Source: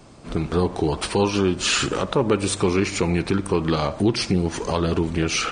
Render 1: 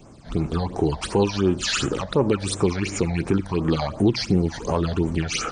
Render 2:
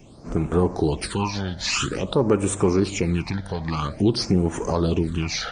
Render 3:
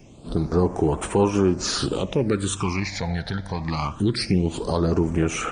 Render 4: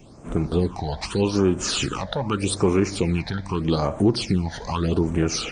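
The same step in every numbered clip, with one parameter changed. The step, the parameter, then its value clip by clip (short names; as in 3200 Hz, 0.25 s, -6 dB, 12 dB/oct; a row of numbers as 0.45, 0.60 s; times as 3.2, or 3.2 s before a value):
phaser, rate: 2.8, 0.5, 0.23, 0.82 Hz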